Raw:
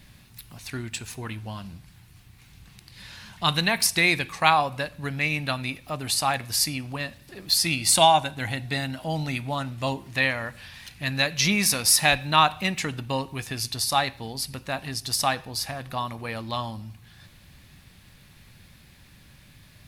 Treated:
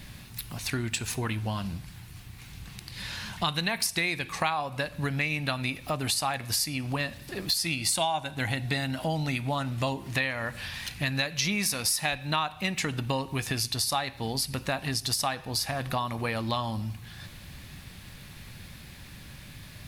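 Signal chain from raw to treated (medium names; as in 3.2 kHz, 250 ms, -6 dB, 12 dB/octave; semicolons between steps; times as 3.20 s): compression 5:1, threshold -33 dBFS, peak gain reduction 18.5 dB; trim +6.5 dB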